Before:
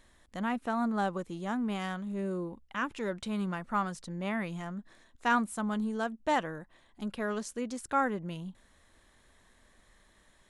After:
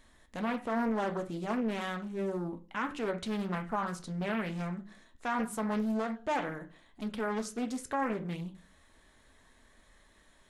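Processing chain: on a send at -5 dB: reverberation RT60 0.40 s, pre-delay 3 ms; on the sum: peak limiter -23 dBFS, peak gain reduction 9 dB; loudspeaker Doppler distortion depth 0.61 ms

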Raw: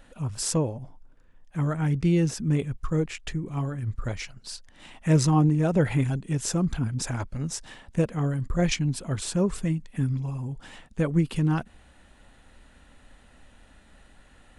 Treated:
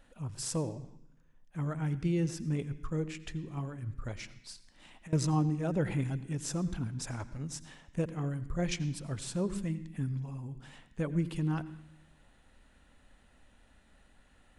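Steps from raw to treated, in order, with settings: 4.52–5.13 s: compression 10:1, threshold -39 dBFS, peak gain reduction 21.5 dB; on a send: reverberation RT60 0.75 s, pre-delay 77 ms, DRR 14.5 dB; on the sum: trim -8.5 dB

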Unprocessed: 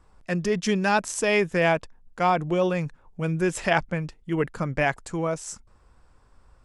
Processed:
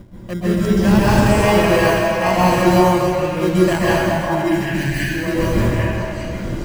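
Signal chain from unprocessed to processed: local Wiener filter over 25 samples; wind noise 240 Hz -33 dBFS; rippled EQ curve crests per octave 1.3, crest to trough 8 dB; in parallel at -4 dB: sample-and-hold 25×; on the sum: time-frequency box 3.84–5.11 s, 430–1500 Hz -25 dB; on a send: repeats whose band climbs or falls 398 ms, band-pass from 830 Hz, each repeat 1.4 oct, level -1 dB; on the sum: plate-style reverb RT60 2.1 s, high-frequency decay 0.85×, pre-delay 115 ms, DRR -8.5 dB; trim -4 dB

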